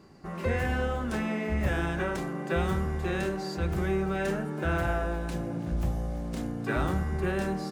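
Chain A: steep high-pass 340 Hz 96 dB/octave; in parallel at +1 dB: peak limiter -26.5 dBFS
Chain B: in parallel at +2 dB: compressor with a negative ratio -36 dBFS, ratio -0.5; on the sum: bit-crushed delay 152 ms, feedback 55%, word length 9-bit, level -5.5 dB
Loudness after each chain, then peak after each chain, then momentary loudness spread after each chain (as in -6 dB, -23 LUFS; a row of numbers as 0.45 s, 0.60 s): -28.5 LUFS, -26.0 LUFS; -15.0 dBFS, -12.5 dBFS; 10 LU, 3 LU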